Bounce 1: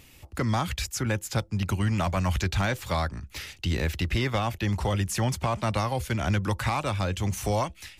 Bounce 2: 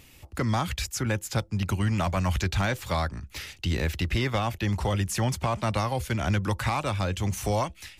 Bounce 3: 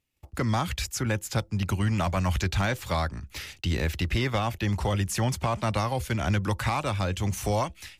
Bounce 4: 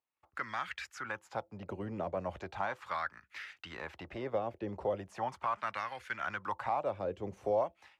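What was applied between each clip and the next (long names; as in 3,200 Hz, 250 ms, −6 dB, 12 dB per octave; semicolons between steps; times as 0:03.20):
no processing that can be heard
noise gate −48 dBFS, range −28 dB
auto-filter band-pass sine 0.38 Hz 460–1,700 Hz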